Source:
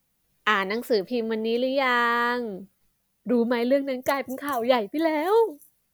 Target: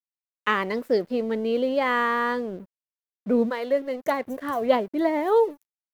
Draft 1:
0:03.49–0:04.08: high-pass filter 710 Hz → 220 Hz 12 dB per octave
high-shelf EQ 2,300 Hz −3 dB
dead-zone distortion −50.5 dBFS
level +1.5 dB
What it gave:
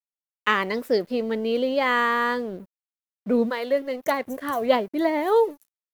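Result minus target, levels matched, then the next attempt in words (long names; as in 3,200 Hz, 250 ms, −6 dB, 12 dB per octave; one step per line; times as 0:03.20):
4,000 Hz band +3.5 dB
0:03.49–0:04.08: high-pass filter 710 Hz → 220 Hz 12 dB per octave
high-shelf EQ 2,300 Hz −9.5 dB
dead-zone distortion −50.5 dBFS
level +1.5 dB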